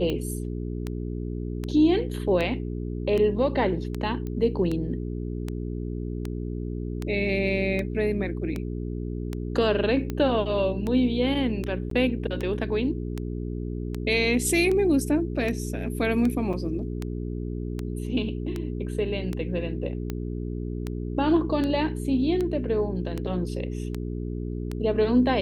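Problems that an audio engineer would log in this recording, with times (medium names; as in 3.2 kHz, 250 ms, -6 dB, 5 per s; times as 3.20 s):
hum 60 Hz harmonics 7 -31 dBFS
tick 78 rpm -17 dBFS
4.27 s: pop -23 dBFS
11.90–11.91 s: dropout 13 ms
16.53–16.54 s: dropout 5.3 ms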